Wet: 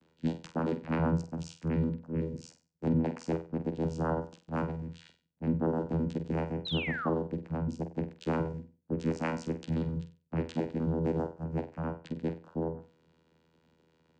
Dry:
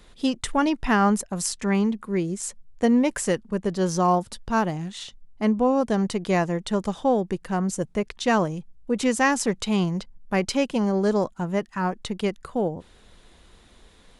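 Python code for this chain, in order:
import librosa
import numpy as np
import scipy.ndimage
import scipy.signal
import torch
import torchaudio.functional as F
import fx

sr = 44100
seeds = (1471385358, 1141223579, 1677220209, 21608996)

y = fx.pitch_trill(x, sr, semitones=-4.5, every_ms=65)
y = fx.vocoder(y, sr, bands=8, carrier='saw', carrier_hz=81.1)
y = fx.spec_paint(y, sr, seeds[0], shape='fall', start_s=6.65, length_s=0.45, low_hz=1000.0, high_hz=4200.0, level_db=-30.0)
y = fx.room_flutter(y, sr, wall_m=8.1, rt60_s=0.33)
y = y * 10.0 ** (-7.0 / 20.0)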